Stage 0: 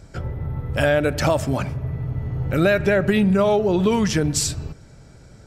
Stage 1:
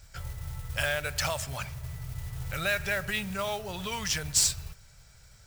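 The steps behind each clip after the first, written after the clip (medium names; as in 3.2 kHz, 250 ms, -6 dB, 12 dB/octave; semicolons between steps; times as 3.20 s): amplifier tone stack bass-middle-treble 10-0-10; modulation noise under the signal 15 dB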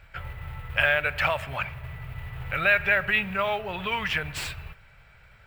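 FFT filter 120 Hz 0 dB, 2.6 kHz +10 dB, 6 kHz -20 dB, 16 kHz -8 dB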